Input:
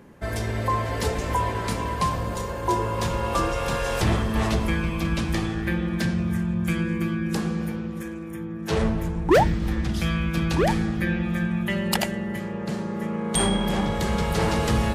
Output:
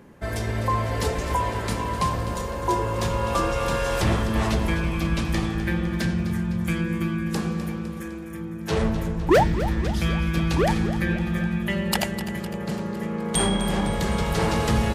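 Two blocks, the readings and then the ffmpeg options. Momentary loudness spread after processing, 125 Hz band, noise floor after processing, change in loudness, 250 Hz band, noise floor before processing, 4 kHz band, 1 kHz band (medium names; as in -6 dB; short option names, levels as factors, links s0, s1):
7 LU, +0.5 dB, -33 dBFS, +0.5 dB, 0.0 dB, -33 dBFS, +0.5 dB, 0.0 dB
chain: -af "aecho=1:1:254|508|762|1016|1270|1524:0.237|0.135|0.077|0.0439|0.025|0.0143"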